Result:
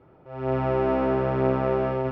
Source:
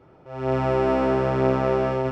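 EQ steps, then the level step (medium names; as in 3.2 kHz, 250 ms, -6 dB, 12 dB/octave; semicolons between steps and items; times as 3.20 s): distance through air 230 m; -1.5 dB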